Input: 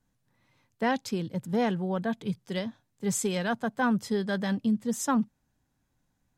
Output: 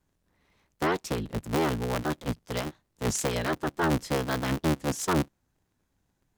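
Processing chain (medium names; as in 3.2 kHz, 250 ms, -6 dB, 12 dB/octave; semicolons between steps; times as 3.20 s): cycle switcher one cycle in 3, inverted; warped record 33 1/3 rpm, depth 160 cents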